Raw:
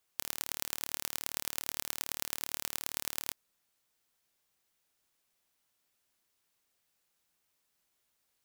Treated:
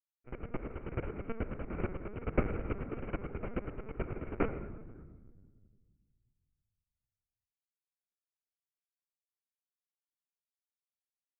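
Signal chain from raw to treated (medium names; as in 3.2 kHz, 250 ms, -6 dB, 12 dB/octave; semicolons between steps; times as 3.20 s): octave divider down 2 oct, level -3 dB; compression 4:1, threshold -50 dBFS, peak gain reduction 18 dB; fuzz box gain 55 dB, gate -55 dBFS; flange 0.88 Hz, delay 1.3 ms, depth 7 ms, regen +22%; sample-and-hold 36×; reverberation RT60 1.2 s, pre-delay 6 ms, DRR 6 dB; LPC vocoder at 8 kHz pitch kept; speed mistake 45 rpm record played at 33 rpm; trim +10.5 dB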